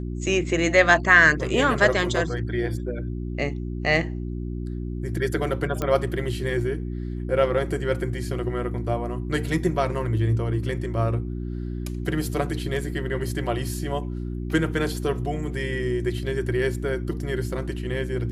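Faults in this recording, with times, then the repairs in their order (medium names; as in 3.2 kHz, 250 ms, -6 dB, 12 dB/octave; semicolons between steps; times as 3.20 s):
hum 60 Hz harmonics 6 -30 dBFS
5.82 s: pop -13 dBFS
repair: de-click; de-hum 60 Hz, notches 6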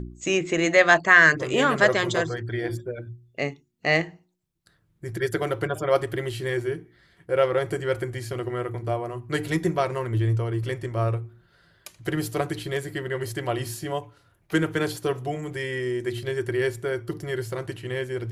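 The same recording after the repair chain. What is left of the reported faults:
nothing left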